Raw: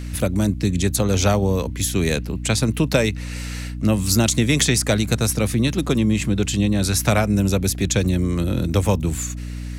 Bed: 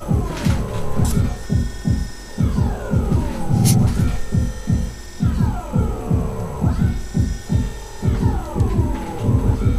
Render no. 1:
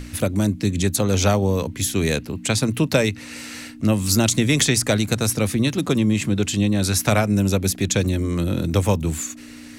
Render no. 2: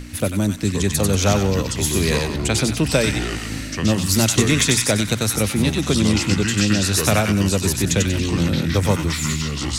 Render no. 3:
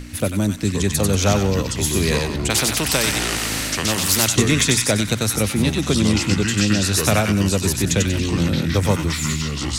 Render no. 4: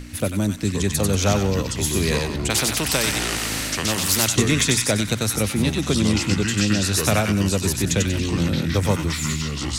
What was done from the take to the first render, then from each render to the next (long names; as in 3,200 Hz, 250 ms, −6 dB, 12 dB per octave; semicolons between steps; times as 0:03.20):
mains-hum notches 60/120/180 Hz
on a send: delay with a high-pass on its return 94 ms, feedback 36%, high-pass 1,400 Hz, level −3 dB; on the sum: delay with pitch and tempo change per echo 450 ms, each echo −5 semitones, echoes 2, each echo −6 dB
0:02.50–0:04.28: every bin compressed towards the loudest bin 2 to 1
level −2 dB